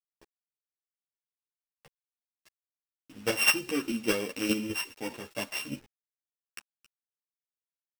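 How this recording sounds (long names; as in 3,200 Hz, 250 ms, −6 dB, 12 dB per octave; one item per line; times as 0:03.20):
a buzz of ramps at a fixed pitch in blocks of 16 samples
chopped level 4.9 Hz, depth 60%, duty 15%
a quantiser's noise floor 10 bits, dither none
a shimmering, thickened sound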